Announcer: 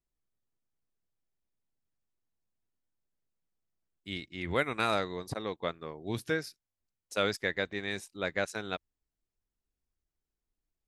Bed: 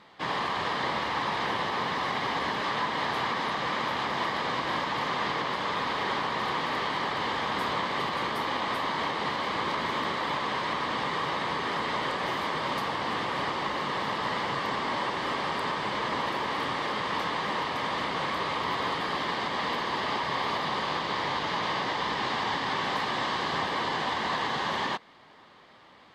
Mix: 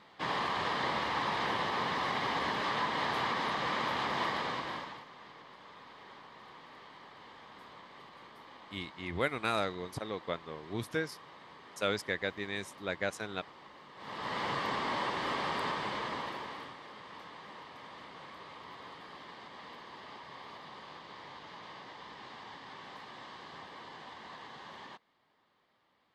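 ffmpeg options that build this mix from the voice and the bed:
ffmpeg -i stem1.wav -i stem2.wav -filter_complex "[0:a]adelay=4650,volume=-2.5dB[link_01];[1:a]volume=15.5dB,afade=type=out:start_time=4.29:duration=0.76:silence=0.105925,afade=type=in:start_time=13.96:duration=0.51:silence=0.112202,afade=type=out:start_time=15.64:duration=1.13:silence=0.177828[link_02];[link_01][link_02]amix=inputs=2:normalize=0" out.wav

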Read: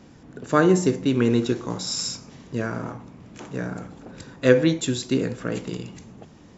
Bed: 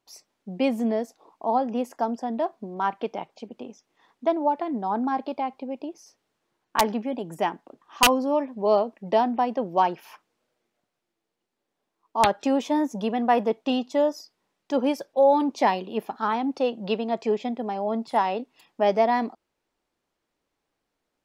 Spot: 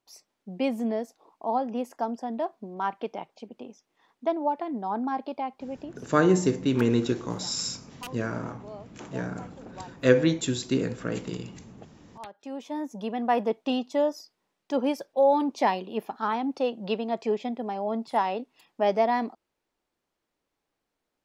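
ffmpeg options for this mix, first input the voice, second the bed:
ffmpeg -i stem1.wav -i stem2.wav -filter_complex "[0:a]adelay=5600,volume=-3dB[link_01];[1:a]volume=16.5dB,afade=type=out:start_time=5.78:duration=0.44:silence=0.112202,afade=type=in:start_time=12.32:duration=1.14:silence=0.1[link_02];[link_01][link_02]amix=inputs=2:normalize=0" out.wav

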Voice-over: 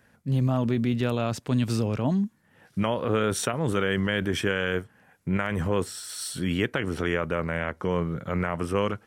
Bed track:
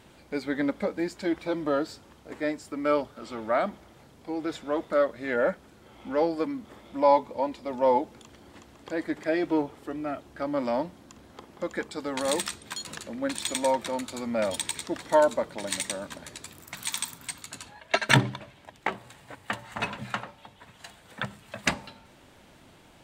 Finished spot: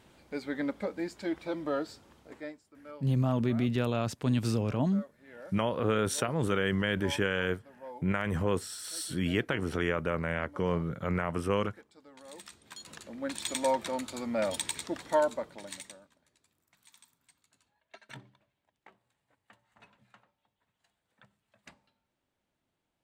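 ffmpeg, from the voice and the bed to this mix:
ffmpeg -i stem1.wav -i stem2.wav -filter_complex "[0:a]adelay=2750,volume=-3.5dB[link_01];[1:a]volume=14.5dB,afade=type=out:start_time=2.18:duration=0.44:silence=0.133352,afade=type=in:start_time=12.31:duration=1.38:silence=0.1,afade=type=out:start_time=14.83:duration=1.28:silence=0.0530884[link_02];[link_01][link_02]amix=inputs=2:normalize=0" out.wav

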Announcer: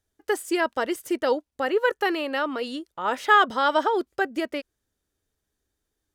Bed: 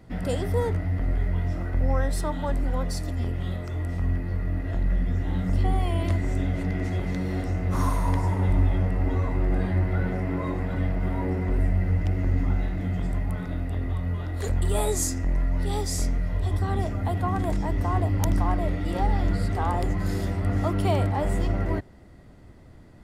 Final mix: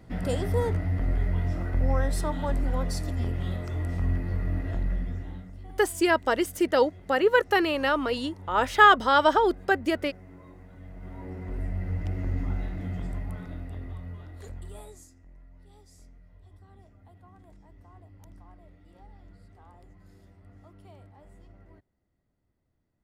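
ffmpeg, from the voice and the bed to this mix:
ffmpeg -i stem1.wav -i stem2.wav -filter_complex "[0:a]adelay=5500,volume=1.5dB[link_01];[1:a]volume=14.5dB,afade=type=out:start_time=4.57:duration=0.94:silence=0.1,afade=type=in:start_time=10.81:duration=1.36:silence=0.16788,afade=type=out:start_time=12.95:duration=2.12:silence=0.0749894[link_02];[link_01][link_02]amix=inputs=2:normalize=0" out.wav

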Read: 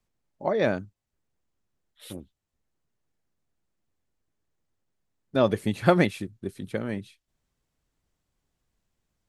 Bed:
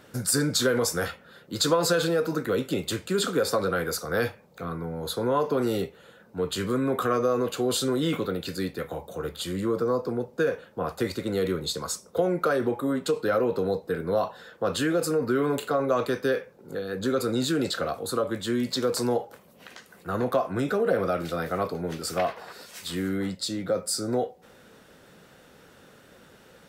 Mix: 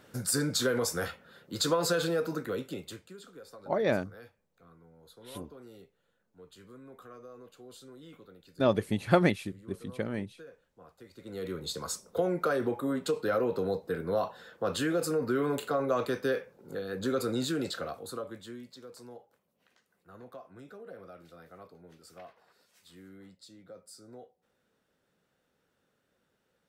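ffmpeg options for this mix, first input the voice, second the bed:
ffmpeg -i stem1.wav -i stem2.wav -filter_complex "[0:a]adelay=3250,volume=-3.5dB[link_01];[1:a]volume=15.5dB,afade=type=out:start_time=2.19:duration=0.99:silence=0.1,afade=type=in:start_time=11.11:duration=0.77:silence=0.0944061,afade=type=out:start_time=17.27:duration=1.44:silence=0.11885[link_02];[link_01][link_02]amix=inputs=2:normalize=0" out.wav

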